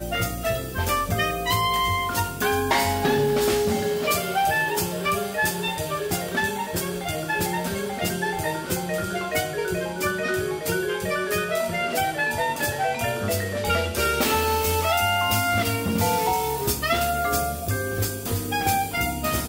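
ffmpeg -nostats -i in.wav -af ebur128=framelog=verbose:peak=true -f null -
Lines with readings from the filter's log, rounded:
Integrated loudness:
  I:         -23.9 LUFS
  Threshold: -33.9 LUFS
Loudness range:
  LRA:         4.0 LU
  Threshold: -43.8 LUFS
  LRA low:   -26.1 LUFS
  LRA high:  -22.1 LUFS
True peak:
  Peak:       -9.6 dBFS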